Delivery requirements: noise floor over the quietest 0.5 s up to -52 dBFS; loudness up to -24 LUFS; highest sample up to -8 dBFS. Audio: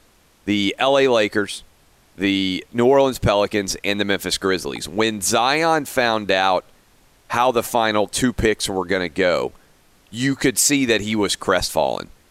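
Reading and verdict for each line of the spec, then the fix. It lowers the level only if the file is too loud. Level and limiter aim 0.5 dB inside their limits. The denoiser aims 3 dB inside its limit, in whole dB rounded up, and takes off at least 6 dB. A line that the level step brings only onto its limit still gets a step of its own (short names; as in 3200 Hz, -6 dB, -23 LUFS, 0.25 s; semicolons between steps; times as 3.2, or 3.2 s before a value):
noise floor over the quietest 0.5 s -54 dBFS: OK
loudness -19.0 LUFS: fail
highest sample -5.0 dBFS: fail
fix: gain -5.5 dB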